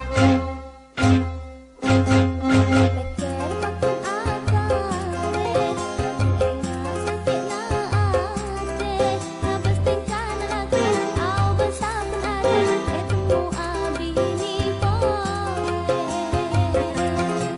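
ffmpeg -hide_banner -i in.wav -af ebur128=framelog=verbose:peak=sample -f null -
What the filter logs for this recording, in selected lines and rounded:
Integrated loudness:
  I:         -22.4 LUFS
  Threshold: -32.5 LUFS
Loudness range:
  LRA:         2.9 LU
  Threshold: -42.6 LUFS
  LRA low:   -23.8 LUFS
  LRA high:  -20.9 LUFS
Sample peak:
  Peak:       -8.8 dBFS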